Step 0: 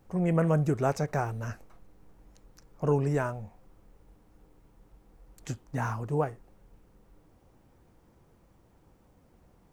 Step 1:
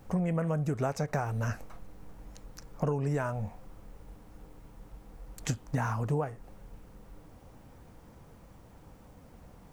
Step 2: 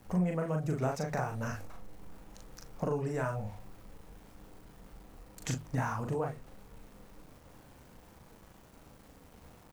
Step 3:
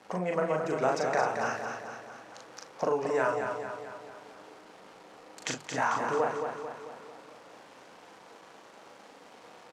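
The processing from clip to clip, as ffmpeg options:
-af "equalizer=f=360:w=5.3:g=-7,acompressor=threshold=-35dB:ratio=16,volume=8.5dB"
-filter_complex "[0:a]aeval=exprs='val(0)*gte(abs(val(0)),0.00237)':c=same,bandreject=f=50:t=h:w=6,bandreject=f=100:t=h:w=6,bandreject=f=150:t=h:w=6,asplit=2[a][b];[b]adelay=39,volume=-3dB[c];[a][c]amix=inputs=2:normalize=0,volume=-3dB"
-filter_complex "[0:a]highpass=430,lowpass=5.8k,asplit=2[a][b];[b]aecho=0:1:222|444|666|888|1110|1332|1554:0.501|0.266|0.141|0.0746|0.0395|0.021|0.0111[c];[a][c]amix=inputs=2:normalize=0,volume=8dB"

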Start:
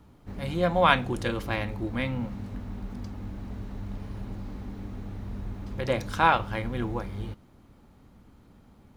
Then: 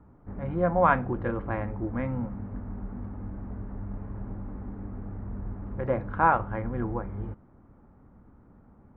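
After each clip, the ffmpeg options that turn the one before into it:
-af "lowpass=f=1.6k:w=0.5412,lowpass=f=1.6k:w=1.3066"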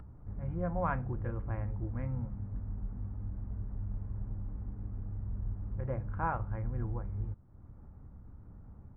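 -af "firequalizer=gain_entry='entry(100,0);entry(230,-12);entry(2600,-14);entry(3700,-21)':delay=0.05:min_phase=1,acompressor=mode=upward:threshold=-41dB:ratio=2.5"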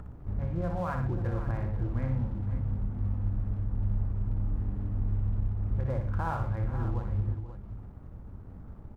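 -af "alimiter=level_in=6.5dB:limit=-24dB:level=0:latency=1:release=175,volume=-6.5dB,aeval=exprs='sgn(val(0))*max(abs(val(0))-0.00119,0)':c=same,aecho=1:1:61|119|491|537:0.501|0.251|0.158|0.266,volume=7.5dB"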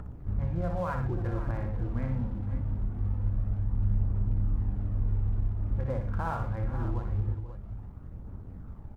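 -af "aphaser=in_gain=1:out_gain=1:delay=4.6:decay=0.26:speed=0.24:type=triangular"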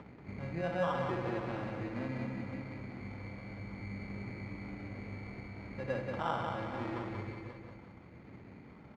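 -af "acrusher=samples=20:mix=1:aa=0.000001,highpass=230,lowpass=2k,aecho=1:1:184|368|552|736|920|1104:0.596|0.274|0.126|0.058|0.0267|0.0123"

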